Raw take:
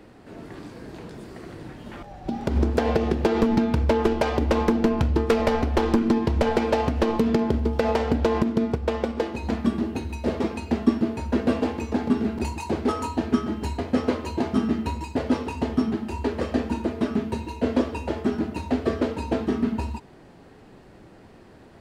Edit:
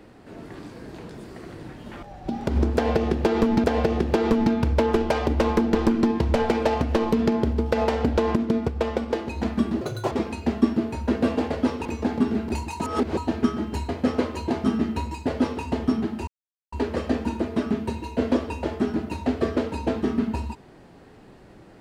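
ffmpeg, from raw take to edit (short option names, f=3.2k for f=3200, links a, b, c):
-filter_complex "[0:a]asplit=10[a][b][c][d][e][f][g][h][i][j];[a]atrim=end=3.642[k];[b]atrim=start=2.748:end=4.862[l];[c]atrim=start=5.818:end=9.884[m];[d]atrim=start=9.88:end=10.36,asetpts=PTS-STARTPTS,asetrate=69678,aresample=44100,atrim=end_sample=13397,asetpts=PTS-STARTPTS[n];[e]atrim=start=10.356:end=11.752[o];[f]atrim=start=15.168:end=15.522[p];[g]atrim=start=11.748:end=12.712[q];[h]atrim=start=12.708:end=13.072,asetpts=PTS-STARTPTS,areverse[r];[i]atrim=start=13.068:end=16.17,asetpts=PTS-STARTPTS,afade=t=out:st=3.098:d=0.004:c=hsin,apad=pad_dur=0.45[s];[j]atrim=start=16.17,asetpts=PTS-STARTPTS,afade=t=in:d=0.004:c=hsin[t];[k][l]acrossfade=d=0.004:c1=hsin:c2=hsin[u];[u][m]acrossfade=d=0.004:c1=hsin:c2=hsin[v];[v][n]acrossfade=d=0.004:c1=hsin:c2=hsin[w];[w][o]acrossfade=d=0.004:c1=hsin:c2=hsin[x];[x][p]acrossfade=d=0.004:c1=hsin:c2=hsin[y];[y][q]acrossfade=d=0.004:c1=hsin:c2=hsin[z];[z][r]acrossfade=d=0.004:c1=hsin:c2=hsin[aa];[s][t]concat=n=2:v=0:a=1[ab];[aa][ab]acrossfade=d=0.004:c1=hsin:c2=hsin"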